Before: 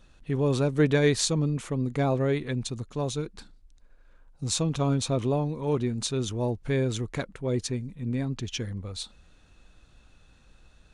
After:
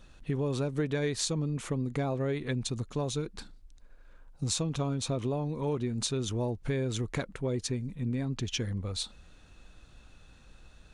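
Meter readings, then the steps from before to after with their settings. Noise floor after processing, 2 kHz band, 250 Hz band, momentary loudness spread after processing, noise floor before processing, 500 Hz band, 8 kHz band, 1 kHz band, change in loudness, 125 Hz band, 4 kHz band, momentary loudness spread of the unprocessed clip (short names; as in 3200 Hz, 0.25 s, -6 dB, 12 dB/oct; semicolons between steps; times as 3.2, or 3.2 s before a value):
-56 dBFS, -5.5 dB, -4.5 dB, 5 LU, -58 dBFS, -5.5 dB, -3.0 dB, -5.0 dB, -4.5 dB, -4.0 dB, -2.5 dB, 11 LU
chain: compressor 5:1, threshold -30 dBFS, peak gain reduction 12 dB; gain +2 dB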